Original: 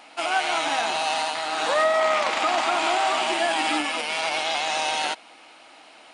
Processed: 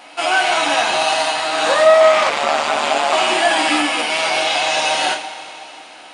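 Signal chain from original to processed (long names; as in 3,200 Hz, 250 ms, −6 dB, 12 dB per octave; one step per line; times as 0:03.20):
coupled-rooms reverb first 0.31 s, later 3.3 s, from −18 dB, DRR 0 dB
0:02.29–0:03.13: ring modulation 74 Hz
level +5 dB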